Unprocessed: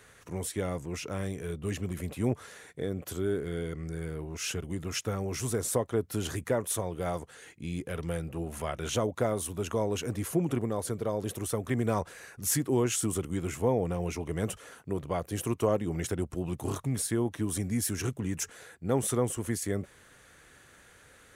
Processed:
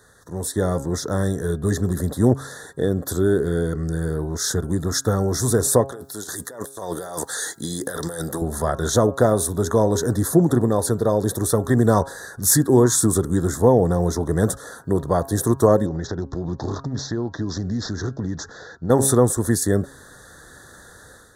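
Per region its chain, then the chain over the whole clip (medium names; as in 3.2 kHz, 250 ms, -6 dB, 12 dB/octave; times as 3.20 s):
5.92–8.42 s: high-pass 530 Hz 6 dB/octave + treble shelf 2.8 kHz +9 dB + compressor with a negative ratio -43 dBFS
15.86–18.90 s: careless resampling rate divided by 3×, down none, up filtered + compression 3:1, threshold -35 dBFS + distance through air 120 m
whole clip: elliptic band-stop 1.8–3.6 kHz, stop band 40 dB; de-hum 136.1 Hz, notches 12; level rider gain up to 9 dB; trim +3.5 dB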